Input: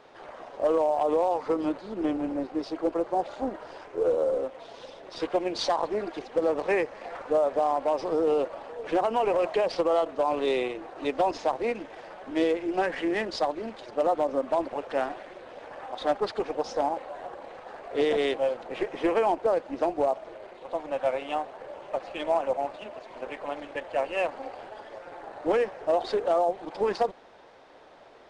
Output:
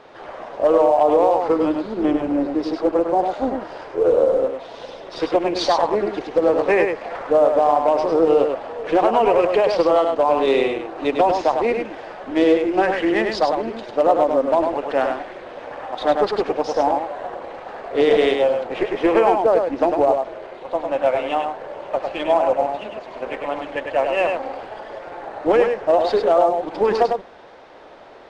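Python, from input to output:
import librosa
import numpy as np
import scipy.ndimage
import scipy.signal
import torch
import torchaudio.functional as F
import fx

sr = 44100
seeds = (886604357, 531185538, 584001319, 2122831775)

y = fx.high_shelf(x, sr, hz=7300.0, db=-10.0)
y = y + 10.0 ** (-5.0 / 20.0) * np.pad(y, (int(101 * sr / 1000.0), 0))[:len(y)]
y = y * librosa.db_to_amplitude(8.0)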